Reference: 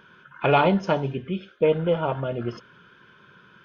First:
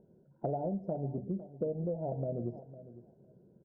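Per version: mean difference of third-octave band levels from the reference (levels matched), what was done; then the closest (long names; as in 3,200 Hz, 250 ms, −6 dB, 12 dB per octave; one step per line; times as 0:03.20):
9.5 dB: elliptic low-pass filter 720 Hz, stop band 40 dB
dynamic equaliser 410 Hz, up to −4 dB, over −34 dBFS
downward compressor 10 to 1, threshold −28 dBFS, peak gain reduction 11.5 dB
repeating echo 505 ms, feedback 15%, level −15.5 dB
level −3 dB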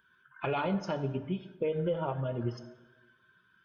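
4.0 dB: spectral dynamics exaggerated over time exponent 1.5
brickwall limiter −19 dBFS, peak gain reduction 10 dB
downward compressor 2 to 1, threshold −31 dBFS, peak gain reduction 5.5 dB
dense smooth reverb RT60 1.2 s, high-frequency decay 0.55×, DRR 9 dB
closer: second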